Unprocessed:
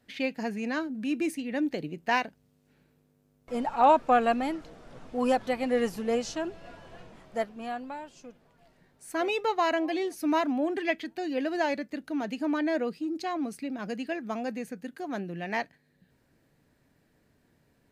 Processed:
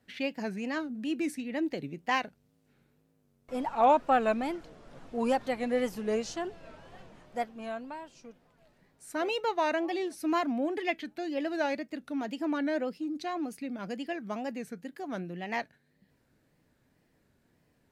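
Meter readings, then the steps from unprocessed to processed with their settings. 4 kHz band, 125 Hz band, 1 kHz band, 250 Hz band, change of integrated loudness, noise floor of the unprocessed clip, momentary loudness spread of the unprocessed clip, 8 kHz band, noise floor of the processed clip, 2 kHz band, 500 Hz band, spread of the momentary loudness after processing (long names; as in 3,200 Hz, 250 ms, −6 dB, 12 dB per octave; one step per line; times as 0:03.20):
−2.0 dB, −1.5 dB, −2.5 dB, −2.5 dB, −2.5 dB, −68 dBFS, 12 LU, −2.5 dB, −71 dBFS, −2.5 dB, −2.0 dB, 12 LU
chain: tape wow and flutter 120 cents
level −2.5 dB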